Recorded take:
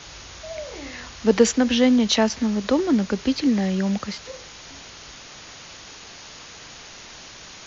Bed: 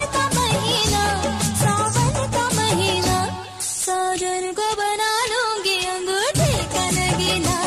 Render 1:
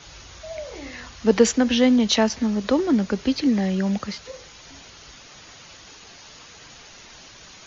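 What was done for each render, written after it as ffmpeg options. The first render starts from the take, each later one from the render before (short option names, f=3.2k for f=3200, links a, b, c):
-af "afftdn=nr=6:nf=-42"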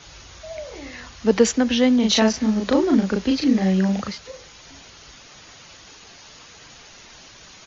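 -filter_complex "[0:a]asplit=3[a][b][c];[a]afade=t=out:st=2.02:d=0.02[d];[b]asplit=2[e][f];[f]adelay=37,volume=-2dB[g];[e][g]amix=inputs=2:normalize=0,afade=t=in:st=2.02:d=0.02,afade=t=out:st=4.09:d=0.02[h];[c]afade=t=in:st=4.09:d=0.02[i];[d][h][i]amix=inputs=3:normalize=0"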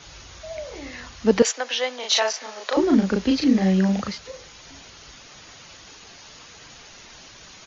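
-filter_complex "[0:a]asettb=1/sr,asplit=3[a][b][c];[a]atrim=end=1.424[d];[b]atrim=start=1.42:end=2.77,asetpts=PTS-STARTPTS,afade=t=in:d=0.004:c=qsin,afade=t=out:st=1.346:d=0.004:c=qsin,highpass=f=560:w=0.5412,highpass=f=560:w=1.3066[e];[c]atrim=start=2.766[f];[d][e]acrossfade=d=0.004:c1=hsin:c2=qsin[g];[g][f]acrossfade=d=0.004:c1=qsin:c2=hsin"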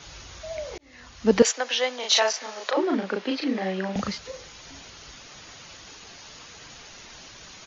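-filter_complex "[0:a]asettb=1/sr,asplit=3[a][b][c];[a]atrim=end=2.714[d];[b]atrim=start=2.71:end=3.96,asetpts=PTS-STARTPTS,afade=t=in:d=0.004:c=qsin,afade=t=out:st=1.246:d=0.004:c=qsin,highpass=420,lowpass=3.5k[e];[c]atrim=start=3.956[f];[d][e]acrossfade=d=0.004:c1=hsin:c2=qsin[g];[g][f]acrossfade=d=0.004:c1=qsin:c2=hsin,asplit=2[h][i];[h]atrim=end=0.78,asetpts=PTS-STARTPTS,afade=t=out:st=0.776:d=0.004:c=hsin[j];[i]atrim=start=0.78,asetpts=PTS-STARTPTS,afade=t=in:d=0.63[k];[j][k]concat=n=2:v=0:a=1"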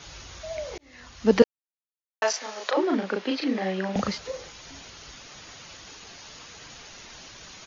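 -filter_complex "[0:a]asettb=1/sr,asplit=3[a][b][c];[a]atrim=end=3.944[d];[b]atrim=start=3.94:end=4.51,asetpts=PTS-STARTPTS,afade=t=in:d=0.004:c=qsin,afade=t=out:st=0.566:d=0.004:c=qsin,equalizer=f=560:t=o:w=2:g=4.5[e];[c]atrim=start=4.506[f];[d][e]acrossfade=d=0.004:c1=hsin:c2=qsin[g];[g][f]acrossfade=d=0.004:c1=qsin:c2=hsin,asplit=3[h][i][j];[h]atrim=end=1.44,asetpts=PTS-STARTPTS,afade=t=out:st=1.436:d=0.004:c=hsin[k];[i]atrim=start=1.44:end=2.22,asetpts=PTS-STARTPTS,volume=0[l];[j]atrim=start=2.22,asetpts=PTS-STARTPTS,afade=t=in:d=0.004:c=hsin[m];[k][l][m]concat=n=3:v=0:a=1"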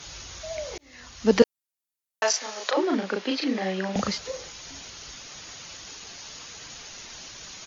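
-af "aemphasis=mode=production:type=cd"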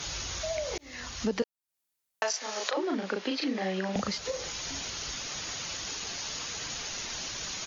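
-filter_complex "[0:a]asplit=2[a][b];[b]alimiter=limit=-16dB:level=0:latency=1:release=318,volume=-1dB[c];[a][c]amix=inputs=2:normalize=0,acompressor=threshold=-31dB:ratio=3"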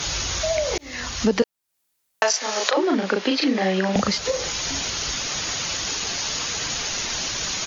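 -af "volume=10dB"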